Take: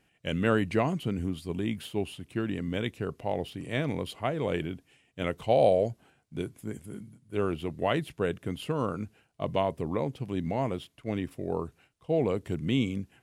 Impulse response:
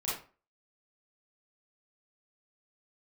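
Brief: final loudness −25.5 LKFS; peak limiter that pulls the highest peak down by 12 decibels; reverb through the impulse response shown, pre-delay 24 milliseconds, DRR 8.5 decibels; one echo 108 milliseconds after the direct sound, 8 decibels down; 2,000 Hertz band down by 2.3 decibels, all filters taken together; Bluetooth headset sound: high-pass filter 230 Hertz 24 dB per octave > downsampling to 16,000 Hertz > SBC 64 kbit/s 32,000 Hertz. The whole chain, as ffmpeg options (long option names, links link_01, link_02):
-filter_complex "[0:a]equalizer=frequency=2000:width_type=o:gain=-3,alimiter=limit=-22.5dB:level=0:latency=1,aecho=1:1:108:0.398,asplit=2[link_01][link_02];[1:a]atrim=start_sample=2205,adelay=24[link_03];[link_02][link_03]afir=irnorm=-1:irlink=0,volume=-13.5dB[link_04];[link_01][link_04]amix=inputs=2:normalize=0,highpass=frequency=230:width=0.5412,highpass=frequency=230:width=1.3066,aresample=16000,aresample=44100,volume=10.5dB" -ar 32000 -c:a sbc -b:a 64k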